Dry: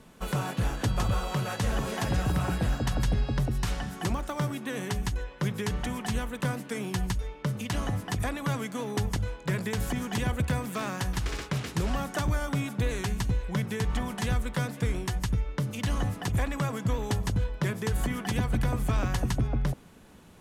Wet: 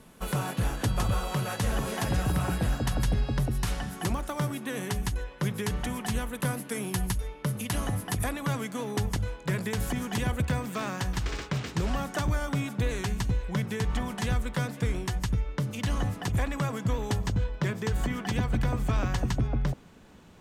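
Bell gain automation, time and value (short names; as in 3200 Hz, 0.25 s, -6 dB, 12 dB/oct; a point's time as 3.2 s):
bell 11000 Hz 0.39 oct
+7.5 dB
from 6.33 s +14.5 dB
from 8.32 s +3 dB
from 10.43 s -6.5 dB
from 11.23 s -14.5 dB
from 11.83 s -3 dB
from 17.23 s -13.5 dB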